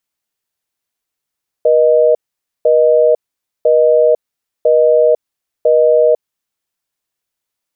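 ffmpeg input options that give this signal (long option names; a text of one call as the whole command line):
ffmpeg -f lavfi -i "aevalsrc='0.335*(sin(2*PI*480*t)+sin(2*PI*620*t))*clip(min(mod(t,1),0.5-mod(t,1))/0.005,0,1)':duration=4.52:sample_rate=44100" out.wav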